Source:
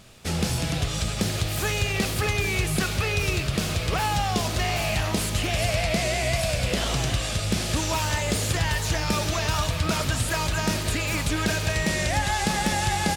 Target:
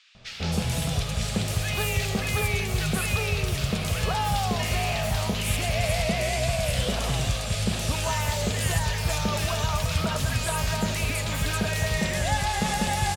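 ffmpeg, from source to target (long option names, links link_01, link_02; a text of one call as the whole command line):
ffmpeg -i in.wav -filter_complex "[0:a]equalizer=frequency=320:width=5.8:gain=-15,acrossover=split=1600|5500[link_01][link_02][link_03];[link_01]adelay=150[link_04];[link_03]adelay=270[link_05];[link_04][link_02][link_05]amix=inputs=3:normalize=0" out.wav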